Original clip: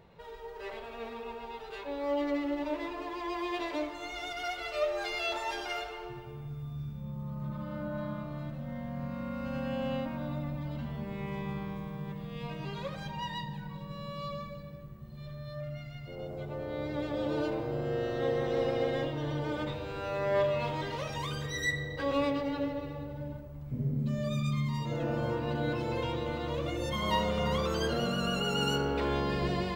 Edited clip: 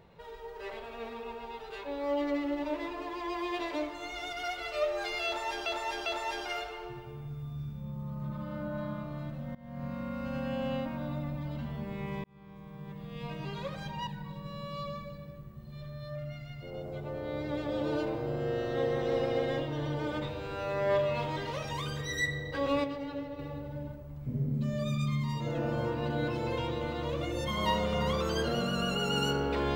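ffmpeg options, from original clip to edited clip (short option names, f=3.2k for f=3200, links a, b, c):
-filter_complex "[0:a]asplit=8[a][b][c][d][e][f][g][h];[a]atrim=end=5.662[i];[b]atrim=start=5.258:end=5.662[j];[c]atrim=start=5.258:end=8.75,asetpts=PTS-STARTPTS,afade=t=out:st=3.488:d=0.004:c=hsin:silence=0.0891251[k];[d]atrim=start=8.75:end=11.44,asetpts=PTS-STARTPTS,afade=t=in:d=0.32:silence=0.0891251,afade=t=out:st=2.686:d=0.004:c=hsin[l];[e]atrim=start=11.44:end=13.272,asetpts=PTS-STARTPTS,afade=t=in:d=1.07[m];[f]atrim=start=13.518:end=22.292[n];[g]atrim=start=22.288:end=22.842,asetpts=PTS-STARTPTS,volume=-5dB[o];[h]atrim=start=22.838[p];[i][j]acrossfade=d=0.004:c1=hsin:c2=hsin[q];[k][l][m]concat=n=3:v=0:a=1[r];[q][r]acrossfade=d=0.004:c1=hsin:c2=hsin[s];[s][n]acrossfade=d=0.004:c1=hsin:c2=hsin[t];[t][o]acrossfade=d=0.004:c1=hsin:c2=hsin[u];[u][p]acrossfade=d=0.004:c1=hsin:c2=hsin"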